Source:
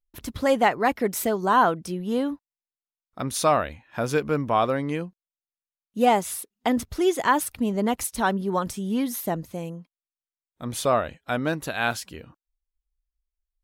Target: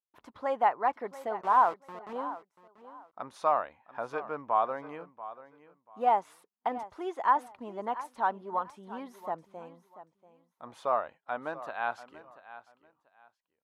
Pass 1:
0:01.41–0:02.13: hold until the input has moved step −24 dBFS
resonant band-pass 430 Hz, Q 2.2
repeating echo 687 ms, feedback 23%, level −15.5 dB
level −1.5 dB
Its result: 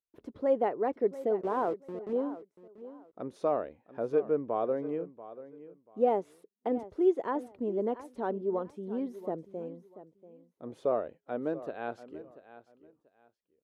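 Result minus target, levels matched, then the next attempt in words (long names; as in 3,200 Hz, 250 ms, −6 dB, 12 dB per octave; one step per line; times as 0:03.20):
1,000 Hz band −8.0 dB
0:01.41–0:02.13: hold until the input has moved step −24 dBFS
resonant band-pass 930 Hz, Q 2.2
repeating echo 687 ms, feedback 23%, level −15.5 dB
level −1.5 dB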